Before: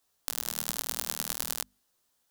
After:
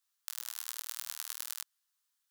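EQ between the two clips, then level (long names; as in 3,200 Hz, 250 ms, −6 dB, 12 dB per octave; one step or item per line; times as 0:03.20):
high-pass filter 1,100 Hz 24 dB per octave
−7.0 dB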